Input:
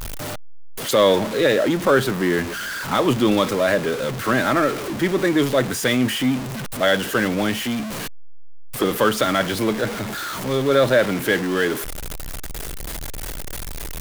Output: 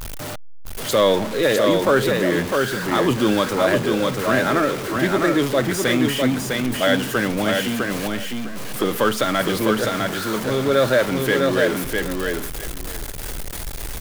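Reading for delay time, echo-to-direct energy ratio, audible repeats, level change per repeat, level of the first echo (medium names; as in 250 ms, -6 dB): 654 ms, -3.5 dB, 2, -14.5 dB, -3.5 dB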